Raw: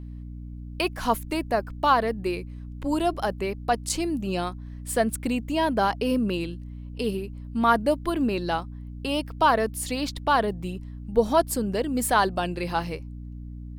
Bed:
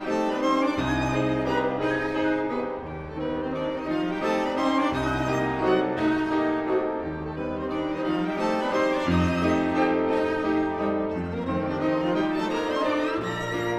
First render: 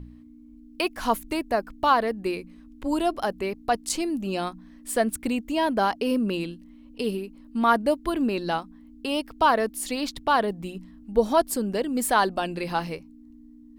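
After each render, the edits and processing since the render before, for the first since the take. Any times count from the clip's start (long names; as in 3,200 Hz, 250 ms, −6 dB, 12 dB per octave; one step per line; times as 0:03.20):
hum removal 60 Hz, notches 3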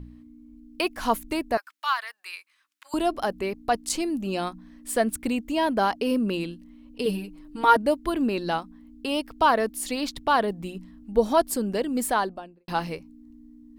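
0:01.57–0:02.94: high-pass filter 1,200 Hz 24 dB per octave
0:07.05–0:07.77: comb filter 6.4 ms, depth 96%
0:11.93–0:12.68: fade out and dull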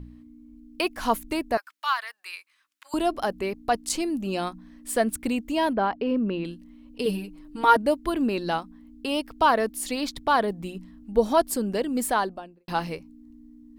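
0:05.73–0:06.45: high-frequency loss of the air 370 metres
0:10.04–0:10.63: notch filter 2,800 Hz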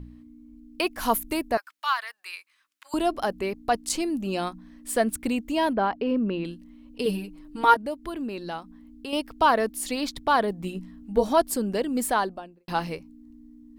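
0:00.98–0:01.47: parametric band 13,000 Hz +14 dB → +7.5 dB 0.75 octaves
0:07.74–0:09.13: downward compressor 1.5 to 1, threshold −42 dBFS
0:10.62–0:11.29: double-tracking delay 16 ms −5 dB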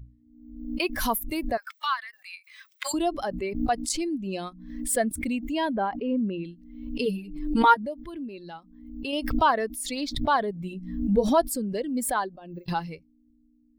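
spectral dynamics exaggerated over time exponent 1.5
background raised ahead of every attack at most 60 dB per second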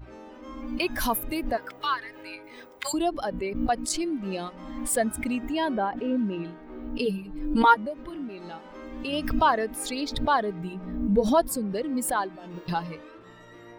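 mix in bed −20.5 dB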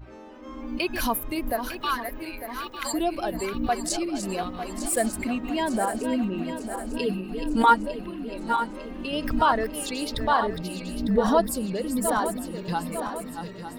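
feedback delay that plays each chunk backwards 451 ms, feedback 73%, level −8.5 dB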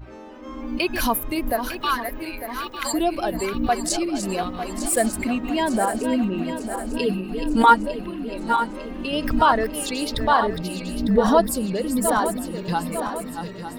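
level +4 dB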